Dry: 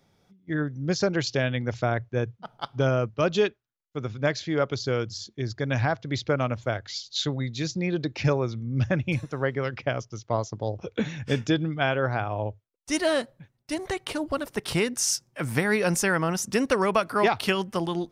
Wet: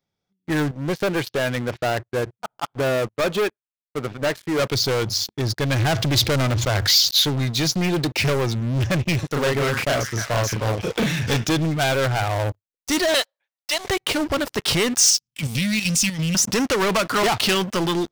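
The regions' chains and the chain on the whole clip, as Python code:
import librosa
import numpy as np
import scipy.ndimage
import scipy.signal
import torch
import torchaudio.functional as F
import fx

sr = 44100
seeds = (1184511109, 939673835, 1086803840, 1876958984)

y = fx.chain(x, sr, fx.lowpass(hz=1800.0, slope=12),
    fx.low_shelf(hz=220.0, db=-10.5), at=(0.71, 4.59))
y = fx.chain(y, sr, fx.bass_treble(bass_db=3, treble_db=2),
    fx.env_flatten(amount_pct=50), at=(5.79, 7.11))
y = fx.chain(y, sr, fx.doubler(ms=35.0, db=-2.0),
    fx.echo_stepped(ms=302, hz=1300.0, octaves=0.7, feedback_pct=70, wet_db=-11), at=(9.27, 11.37))
y = fx.chain(y, sr, fx.highpass(hz=590.0, slope=24),
    fx.dynamic_eq(hz=3700.0, q=1.3, threshold_db=-50.0, ratio=4.0, max_db=7), at=(13.14, 13.85))
y = fx.chain(y, sr, fx.cheby2_bandstop(low_hz=420.0, high_hz=1600.0, order=4, stop_db=40),
    fx.peak_eq(hz=1800.0, db=7.5, octaves=2.7),
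    fx.level_steps(step_db=10), at=(15.1, 16.35))
y = fx.peak_eq(y, sr, hz=11000.0, db=-14.0, octaves=0.93)
y = fx.leveller(y, sr, passes=5)
y = fx.high_shelf(y, sr, hz=2900.0, db=9.5)
y = y * librosa.db_to_amplitude(-8.0)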